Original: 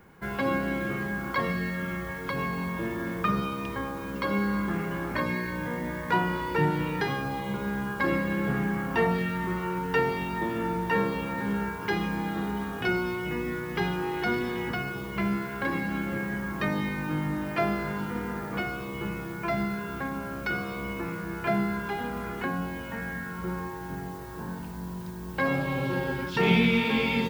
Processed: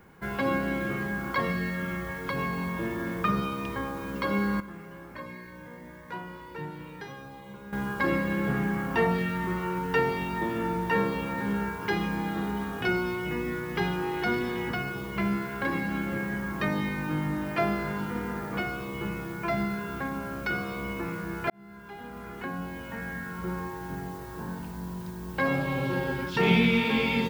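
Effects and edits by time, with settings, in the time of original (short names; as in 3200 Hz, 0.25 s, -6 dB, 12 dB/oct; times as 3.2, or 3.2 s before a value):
4.6–7.73 resonator 530 Hz, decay 0.33 s, mix 80%
21.5–23.96 fade in equal-power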